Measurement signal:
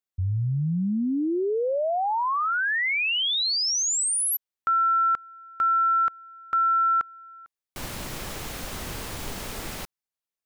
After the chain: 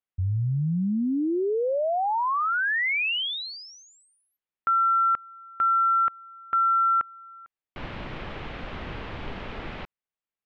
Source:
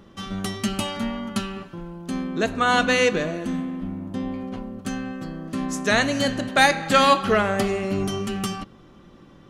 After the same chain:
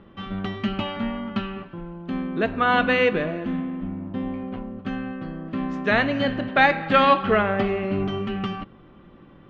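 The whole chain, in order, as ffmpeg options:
ffmpeg -i in.wav -af "lowpass=frequency=3100:width=0.5412,lowpass=frequency=3100:width=1.3066" out.wav

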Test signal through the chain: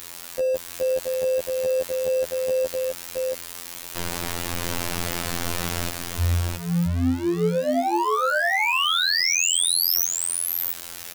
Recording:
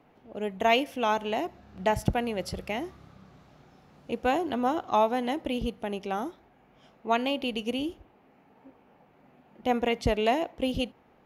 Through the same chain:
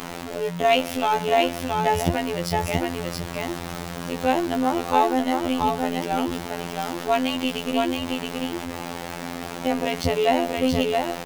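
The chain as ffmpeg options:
ffmpeg -i in.wav -af "aeval=exprs='val(0)+0.5*0.0282*sgn(val(0))':channel_layout=same,aecho=1:1:674:0.668,afftfilt=real='hypot(re,im)*cos(PI*b)':imag='0':win_size=2048:overlap=0.75,volume=5.5dB" out.wav

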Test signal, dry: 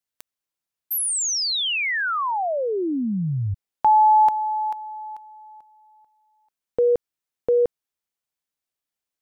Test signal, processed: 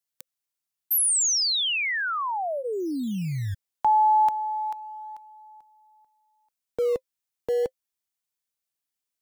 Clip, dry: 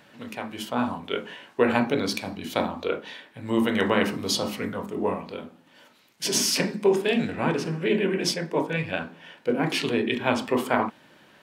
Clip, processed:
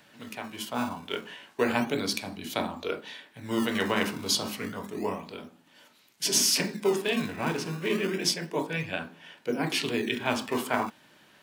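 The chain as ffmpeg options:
ffmpeg -i in.wav -filter_complex "[0:a]highshelf=frequency=3600:gain=7,bandreject=frequency=520:width=15,acrossover=split=300[link_01][link_02];[link_01]acrusher=samples=20:mix=1:aa=0.000001:lfo=1:lforange=32:lforate=0.3[link_03];[link_03][link_02]amix=inputs=2:normalize=0,volume=-4.5dB" out.wav

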